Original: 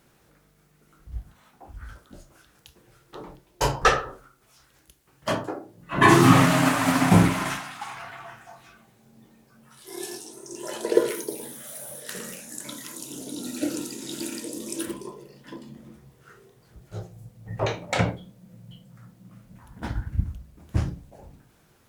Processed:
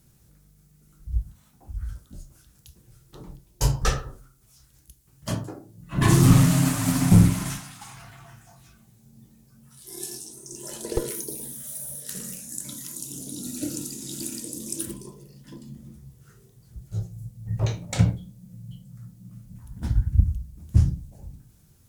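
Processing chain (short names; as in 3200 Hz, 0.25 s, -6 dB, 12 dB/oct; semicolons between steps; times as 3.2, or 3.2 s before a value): low shelf 190 Hz +5 dB; one-sided clip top -13 dBFS; tone controls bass +15 dB, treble +15 dB; gain -10.5 dB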